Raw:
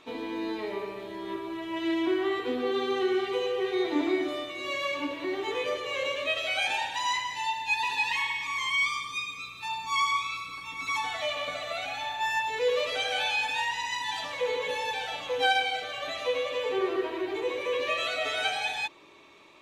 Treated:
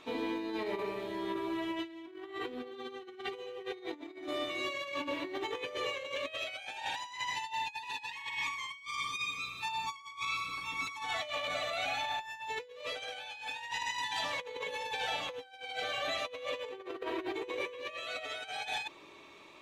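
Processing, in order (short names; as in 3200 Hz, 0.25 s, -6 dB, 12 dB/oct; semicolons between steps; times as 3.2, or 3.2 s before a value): negative-ratio compressor -34 dBFS, ratio -0.5; gain -4 dB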